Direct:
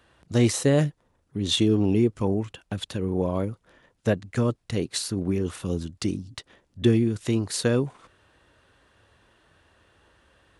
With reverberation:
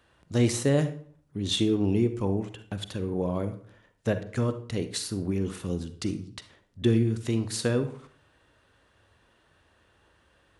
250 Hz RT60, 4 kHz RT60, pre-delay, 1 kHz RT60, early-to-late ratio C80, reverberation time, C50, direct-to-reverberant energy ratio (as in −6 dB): 0.60 s, 0.40 s, 39 ms, 0.50 s, 16.0 dB, 0.50 s, 11.5 dB, 10.0 dB